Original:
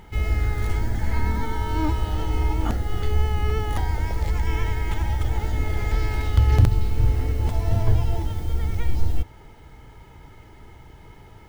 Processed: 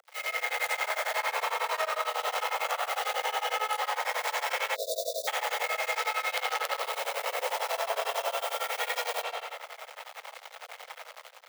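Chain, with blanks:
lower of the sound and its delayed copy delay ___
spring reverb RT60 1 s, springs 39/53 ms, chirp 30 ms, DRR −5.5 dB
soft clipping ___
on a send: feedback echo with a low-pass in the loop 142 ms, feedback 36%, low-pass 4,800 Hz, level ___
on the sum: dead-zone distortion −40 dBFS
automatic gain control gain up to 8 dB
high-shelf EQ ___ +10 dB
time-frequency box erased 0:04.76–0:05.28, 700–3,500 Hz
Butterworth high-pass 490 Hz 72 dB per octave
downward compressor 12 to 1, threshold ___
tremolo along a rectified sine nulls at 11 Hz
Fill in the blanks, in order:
1.5 ms, −10 dBFS, −6.5 dB, 3,400 Hz, −24 dBFS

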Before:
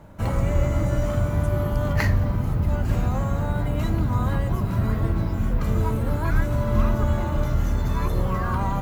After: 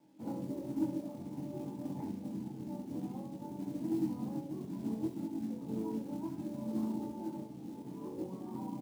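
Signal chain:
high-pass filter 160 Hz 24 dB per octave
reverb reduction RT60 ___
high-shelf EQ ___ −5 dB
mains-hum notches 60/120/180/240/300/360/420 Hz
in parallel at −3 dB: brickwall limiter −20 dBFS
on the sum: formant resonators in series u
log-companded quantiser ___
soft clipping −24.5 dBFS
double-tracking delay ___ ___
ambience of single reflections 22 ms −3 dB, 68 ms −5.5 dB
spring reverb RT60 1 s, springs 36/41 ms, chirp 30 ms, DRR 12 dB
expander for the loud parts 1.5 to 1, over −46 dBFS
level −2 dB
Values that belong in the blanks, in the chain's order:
1.2 s, 3,300 Hz, 6 bits, 16 ms, −12.5 dB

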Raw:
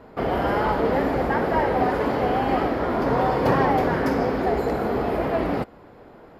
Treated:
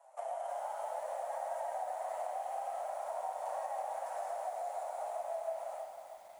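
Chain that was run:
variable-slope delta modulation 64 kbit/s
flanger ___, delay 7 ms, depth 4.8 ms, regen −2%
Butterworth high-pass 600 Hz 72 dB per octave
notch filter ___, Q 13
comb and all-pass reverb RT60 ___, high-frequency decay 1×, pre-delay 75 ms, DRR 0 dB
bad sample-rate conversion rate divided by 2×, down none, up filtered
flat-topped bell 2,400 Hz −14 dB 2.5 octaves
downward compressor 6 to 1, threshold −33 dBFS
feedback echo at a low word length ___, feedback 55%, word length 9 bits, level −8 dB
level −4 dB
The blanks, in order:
0.76 Hz, 4,900 Hz, 0.74 s, 318 ms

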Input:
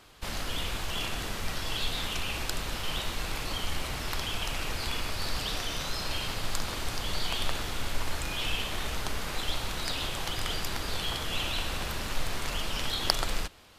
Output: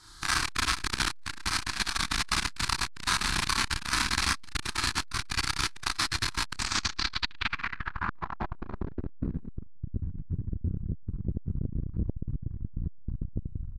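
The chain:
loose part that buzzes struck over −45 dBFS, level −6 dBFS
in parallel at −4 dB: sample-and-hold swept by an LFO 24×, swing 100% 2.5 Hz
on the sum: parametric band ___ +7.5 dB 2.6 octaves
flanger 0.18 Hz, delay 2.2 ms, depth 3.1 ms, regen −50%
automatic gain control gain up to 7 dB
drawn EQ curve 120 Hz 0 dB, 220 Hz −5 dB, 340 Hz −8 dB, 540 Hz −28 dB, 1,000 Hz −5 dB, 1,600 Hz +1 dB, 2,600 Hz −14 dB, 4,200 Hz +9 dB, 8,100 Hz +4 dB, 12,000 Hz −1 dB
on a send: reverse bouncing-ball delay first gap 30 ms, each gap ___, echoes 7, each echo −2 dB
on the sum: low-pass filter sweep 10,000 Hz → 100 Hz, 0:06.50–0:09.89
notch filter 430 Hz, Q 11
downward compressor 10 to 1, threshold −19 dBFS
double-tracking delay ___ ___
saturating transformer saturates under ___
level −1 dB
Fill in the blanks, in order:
940 Hz, 1.25×, 33 ms, −6 dB, 510 Hz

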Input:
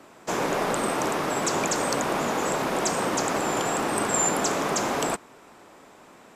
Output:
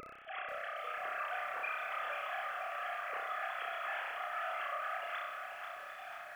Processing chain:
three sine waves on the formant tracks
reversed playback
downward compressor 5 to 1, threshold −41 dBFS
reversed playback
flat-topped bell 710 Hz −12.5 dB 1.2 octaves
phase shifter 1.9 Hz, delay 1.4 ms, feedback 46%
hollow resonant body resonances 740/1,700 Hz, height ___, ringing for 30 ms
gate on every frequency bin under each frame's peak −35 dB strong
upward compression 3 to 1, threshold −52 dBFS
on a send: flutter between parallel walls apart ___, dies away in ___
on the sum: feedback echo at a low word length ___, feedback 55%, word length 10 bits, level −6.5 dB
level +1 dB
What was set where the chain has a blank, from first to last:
6 dB, 5.3 metres, 0.82 s, 488 ms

